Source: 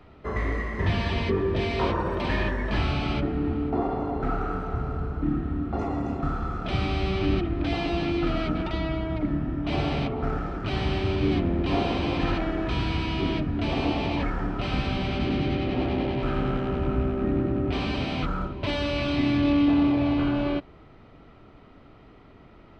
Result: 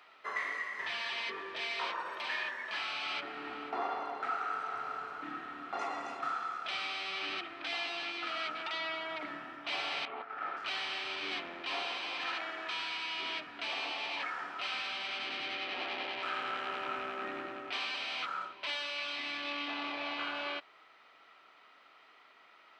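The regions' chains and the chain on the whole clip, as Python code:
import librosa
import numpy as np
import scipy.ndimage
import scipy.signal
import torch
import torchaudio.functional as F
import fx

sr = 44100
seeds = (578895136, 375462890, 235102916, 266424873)

y = fx.chain(x, sr, fx.over_compress(threshold_db=-30.0, ratio=-0.5),
    fx.bandpass_edges(low_hz=150.0, high_hz=2900.0),
    fx.air_absorb(metres=59.0), at=(10.05, 10.57))
y = scipy.signal.sosfilt(scipy.signal.butter(2, 1300.0, 'highpass', fs=sr, output='sos'), y)
y = fx.rider(y, sr, range_db=5, speed_s=0.5)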